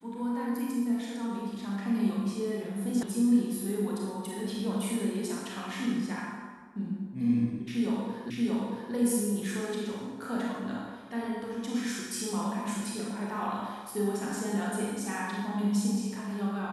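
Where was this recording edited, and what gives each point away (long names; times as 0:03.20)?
0:03.03: cut off before it has died away
0:08.30: the same again, the last 0.63 s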